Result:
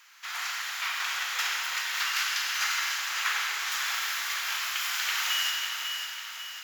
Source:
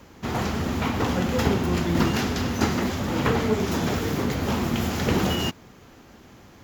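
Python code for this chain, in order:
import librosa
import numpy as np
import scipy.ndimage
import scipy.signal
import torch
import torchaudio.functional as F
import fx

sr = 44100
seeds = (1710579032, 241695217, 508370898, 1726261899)

y = scipy.signal.sosfilt(scipy.signal.butter(4, 1400.0, 'highpass', fs=sr, output='sos'), x)
y = fx.echo_feedback(y, sr, ms=547, feedback_pct=54, wet_db=-8.0)
y = fx.rev_schroeder(y, sr, rt60_s=2.6, comb_ms=33, drr_db=0.5)
y = F.gain(torch.from_numpy(y), 1.0).numpy()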